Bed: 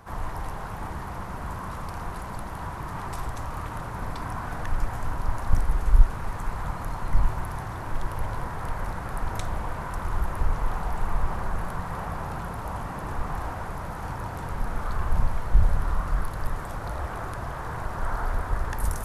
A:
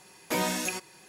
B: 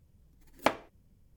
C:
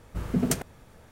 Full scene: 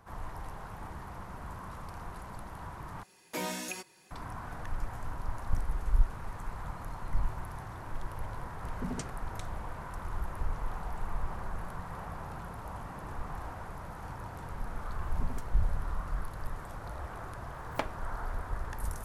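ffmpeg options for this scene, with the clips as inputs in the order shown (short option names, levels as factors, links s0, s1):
-filter_complex "[3:a]asplit=2[s0][s1];[0:a]volume=0.355[s2];[s0]lowpass=f=8100:w=0.5412,lowpass=f=8100:w=1.3066[s3];[s1]alimiter=limit=0.119:level=0:latency=1:release=229[s4];[s2]asplit=2[s5][s6];[s5]atrim=end=3.034[s7];[1:a]atrim=end=1.08,asetpts=PTS-STARTPTS,volume=0.422[s8];[s6]atrim=start=4.106[s9];[s3]atrim=end=1.11,asetpts=PTS-STARTPTS,volume=0.237,afade=t=in:d=0.004:c=hsin,afade=t=out:st=1.106:d=0.004:c=hsin,adelay=8480[s10];[s4]atrim=end=1.11,asetpts=PTS-STARTPTS,volume=0.15,afade=t=in:d=0.004:c=hsin,afade=t=out:st=1.106:d=0.004:c=hsin,adelay=14870[s11];[2:a]atrim=end=1.36,asetpts=PTS-STARTPTS,volume=0.422,afade=t=in:d=0.004:c=hsin,afade=t=out:st=1.356:d=0.004:c=hsin,adelay=17130[s12];[s7][s8]acrossfade=d=0.004:c1=hsin:c2=hsin[s13];[s13][s9]acrossfade=d=0.004:c1=hsin:c2=hsin[s14];[s14][s10][s11][s12]amix=inputs=4:normalize=0"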